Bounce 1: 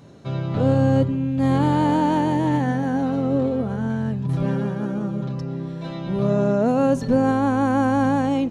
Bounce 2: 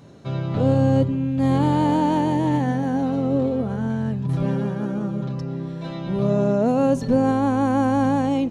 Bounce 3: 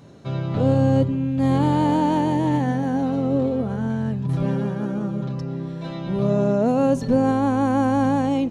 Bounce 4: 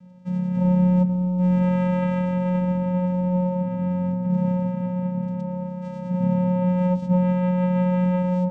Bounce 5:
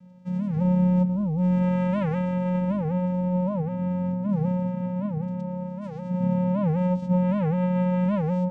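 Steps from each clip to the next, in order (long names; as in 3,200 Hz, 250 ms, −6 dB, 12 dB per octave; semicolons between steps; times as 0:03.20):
dynamic equaliser 1,500 Hz, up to −4 dB, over −39 dBFS, Q 2
no processing that can be heard
channel vocoder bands 4, square 181 Hz; delay with a band-pass on its return 1,011 ms, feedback 54%, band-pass 600 Hz, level −9.5 dB
wow of a warped record 78 rpm, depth 250 cents; level −2.5 dB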